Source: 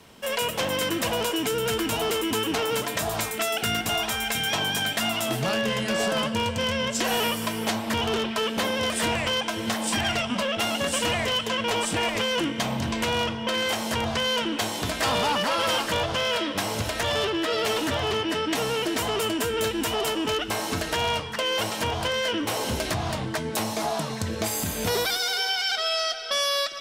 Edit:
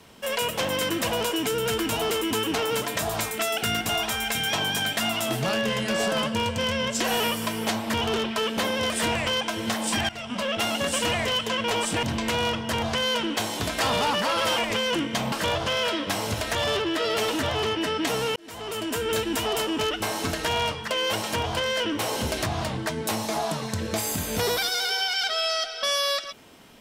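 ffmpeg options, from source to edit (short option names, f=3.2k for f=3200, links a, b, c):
-filter_complex "[0:a]asplit=7[a][b][c][d][e][f][g];[a]atrim=end=10.09,asetpts=PTS-STARTPTS,afade=t=out:st=10.086:d=0.004:c=hsin:silence=0.11885[h];[b]atrim=start=10.09:end=12.032,asetpts=PTS-STARTPTS,afade=t=in:d=0.42:silence=0.11885[i];[c]atrim=start=12.768:end=13.432[j];[d]atrim=start=13.908:end=15.802[k];[e]atrim=start=12.028:end=12.772[l];[f]atrim=start=15.798:end=18.84,asetpts=PTS-STARTPTS,afade=t=out:st=3.038:d=0.004:c=hsin[m];[g]atrim=start=18.84,asetpts=PTS-STARTPTS,afade=t=in:d=0.73[n];[h][i]concat=n=2:v=0:a=1[o];[o][j]acrossfade=d=0.004:c1=hsin:c2=hsin[p];[p][k]acrossfade=d=0.004:c1=hsin:c2=hsin[q];[q][l]acrossfade=d=0.004:c1=hsin:c2=hsin[r];[m][n]concat=n=2:v=0:a=1[s];[r][s]acrossfade=d=0.004:c1=hsin:c2=hsin"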